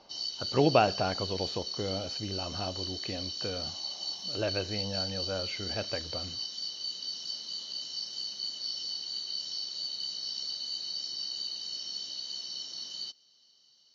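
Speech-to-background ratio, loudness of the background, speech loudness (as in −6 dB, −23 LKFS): 1.0 dB, −34.5 LKFS, −33.5 LKFS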